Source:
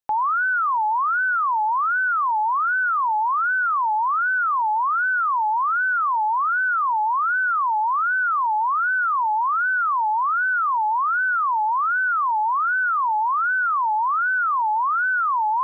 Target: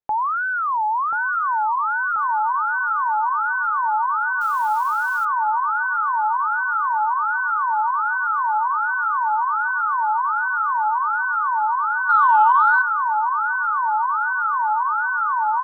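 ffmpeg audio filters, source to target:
-filter_complex "[0:a]lowpass=f=1100:p=1,aecho=1:1:1034|2068|3102|4136|5170|6204|7238:0.376|0.222|0.131|0.0772|0.0455|0.0269|0.0159,asettb=1/sr,asplit=3[s0][s1][s2];[s0]atrim=end=4.414[s3];[s1]atrim=start=4.41:end=5.25,asetpts=PTS-STARTPTS,afade=t=in:d=0.004:c=qsin,afade=t=out:st=0.836:d=0.004:c=qsin,acrusher=bits=8:dc=4:mix=0:aa=0.000001[s4];[s2]atrim=start=5.246[s5];[s3][s4]acrossfade=d=0.004:c1=hsin:c2=qsin[s6];[s6][s5]acrossfade=d=0.004:c1=qsin:c2=hsin,asettb=1/sr,asplit=3[s7][s8][s9];[s7]atrim=end=12.094[s10];[s8]atrim=start=12.09:end=12.82,asetpts=PTS-STARTPTS,afade=t=in:d=0.004:c=qsin,afade=t=out:st=0.726:d=0.004:c=qsin,acontrast=69[s11];[s9]atrim=start=12.816[s12];[s10][s11]acrossfade=d=0.004:c1=hsin:c2=qsin[s13];[s13][s12]acrossfade=d=0.004:c1=qsin:c2=hsin,volume=1.33"

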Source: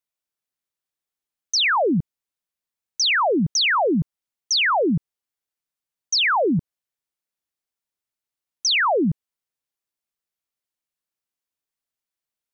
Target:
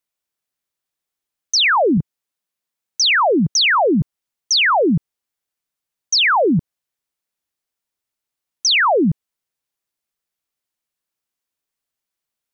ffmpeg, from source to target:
-filter_complex "[0:a]asettb=1/sr,asplit=3[s0][s1][s2];[s0]atrim=end=1.974[s3];[s1]atrim=start=1.97:end=4.01,asetpts=PTS-STARTPTS,afade=t=in:d=0.004:c=qsin,afade=t=out:st=2.036:d=0.004:c=qsin,highpass=98[s4];[s2]atrim=start=4.006[s5];[s3][s4]acrossfade=d=0.004:c1=hsin:c2=qsin[s6];[s6][s5]acrossfade=d=0.004:c1=qsin:c2=hsin,volume=1.68"

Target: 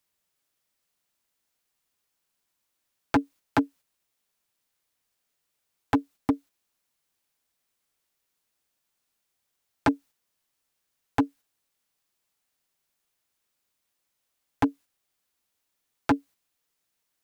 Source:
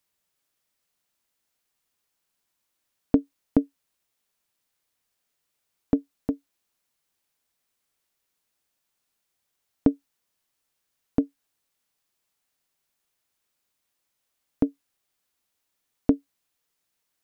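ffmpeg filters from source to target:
-af "agate=range=0.501:threshold=0.00447:ratio=16:detection=peak,aeval=exprs='0.112*(abs(mod(val(0)/0.112+3,4)-2)-1)':c=same,volume=1.88"

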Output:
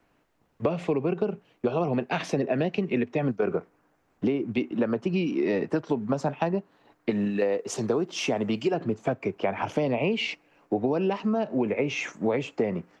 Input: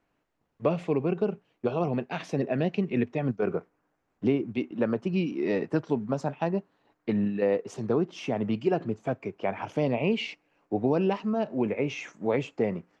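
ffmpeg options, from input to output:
-filter_complex "[0:a]asettb=1/sr,asplit=3[s0][s1][s2];[s0]atrim=end=7.104[s3];[s1]atrim=start=7.1:end=8.74,asetpts=PTS-STARTPTS,afade=t=in:d=0.004:c=qsin,afade=t=out:st=1.636:d=0.004:c=qsin,bass=f=250:g=-6,treble=f=4000:g=7[s4];[s2]atrim=start=8.736[s5];[s3][s4]acrossfade=d=0.004:c1=hsin:c2=qsin[s6];[s6][s5]acrossfade=d=0.004:c1=qsin:c2=hsin,acrossover=split=230|890|1800[s7][s8][s9][s10];[s7]alimiter=level_in=2.11:limit=0.0631:level=0:latency=1:release=397,volume=0.473[s11];[s11][s8][s9][s10]amix=inputs=4:normalize=0,acompressor=threshold=0.0316:ratio=6,volume=2.51"

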